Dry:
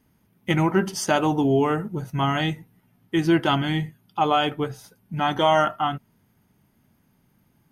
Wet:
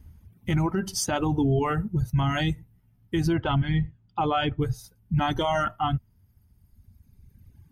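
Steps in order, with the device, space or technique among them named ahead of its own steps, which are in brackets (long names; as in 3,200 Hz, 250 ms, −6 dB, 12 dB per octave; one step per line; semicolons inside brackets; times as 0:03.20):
0:03.33–0:04.62: high-frequency loss of the air 180 metres
reverb reduction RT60 1.9 s
bass and treble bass +11 dB, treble +2 dB
car stereo with a boomy subwoofer (low shelf with overshoot 110 Hz +11.5 dB, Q 1.5; brickwall limiter −16.5 dBFS, peak gain reduction 11 dB)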